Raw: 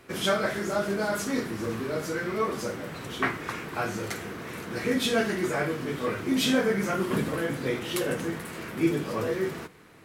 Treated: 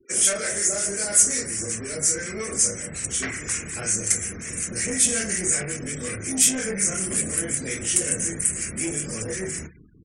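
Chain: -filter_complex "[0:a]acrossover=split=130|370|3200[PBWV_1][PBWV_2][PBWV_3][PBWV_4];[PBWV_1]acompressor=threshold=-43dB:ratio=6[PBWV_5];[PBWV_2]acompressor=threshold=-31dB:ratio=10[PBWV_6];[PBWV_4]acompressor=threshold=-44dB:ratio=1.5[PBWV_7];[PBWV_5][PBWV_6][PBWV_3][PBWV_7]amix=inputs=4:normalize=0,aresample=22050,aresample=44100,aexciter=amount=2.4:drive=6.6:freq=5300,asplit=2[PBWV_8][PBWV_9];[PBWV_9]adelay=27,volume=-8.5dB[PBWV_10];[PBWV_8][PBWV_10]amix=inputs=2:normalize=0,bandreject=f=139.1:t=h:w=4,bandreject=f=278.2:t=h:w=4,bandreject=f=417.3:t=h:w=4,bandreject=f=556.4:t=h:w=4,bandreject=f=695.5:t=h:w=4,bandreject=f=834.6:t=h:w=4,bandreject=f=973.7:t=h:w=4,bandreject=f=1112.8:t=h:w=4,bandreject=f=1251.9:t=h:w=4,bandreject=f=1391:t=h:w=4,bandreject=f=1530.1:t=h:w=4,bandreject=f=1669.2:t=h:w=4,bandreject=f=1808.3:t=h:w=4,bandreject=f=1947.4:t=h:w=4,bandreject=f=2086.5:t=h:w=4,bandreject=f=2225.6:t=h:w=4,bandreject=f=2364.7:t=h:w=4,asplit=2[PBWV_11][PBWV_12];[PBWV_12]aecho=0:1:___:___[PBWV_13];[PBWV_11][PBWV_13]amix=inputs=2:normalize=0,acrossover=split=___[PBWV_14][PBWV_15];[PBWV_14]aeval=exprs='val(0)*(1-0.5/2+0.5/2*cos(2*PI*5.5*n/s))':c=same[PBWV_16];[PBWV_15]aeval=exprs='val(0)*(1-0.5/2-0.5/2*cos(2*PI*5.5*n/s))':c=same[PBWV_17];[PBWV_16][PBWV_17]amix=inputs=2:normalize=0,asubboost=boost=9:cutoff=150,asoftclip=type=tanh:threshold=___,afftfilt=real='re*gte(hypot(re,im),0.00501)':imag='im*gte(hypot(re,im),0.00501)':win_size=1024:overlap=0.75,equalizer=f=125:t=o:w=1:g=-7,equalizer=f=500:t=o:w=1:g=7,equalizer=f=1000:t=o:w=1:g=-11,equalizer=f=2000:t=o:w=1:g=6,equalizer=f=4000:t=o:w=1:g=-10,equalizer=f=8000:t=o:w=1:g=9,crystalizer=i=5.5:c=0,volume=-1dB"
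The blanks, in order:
114, 0.15, 1200, -24.5dB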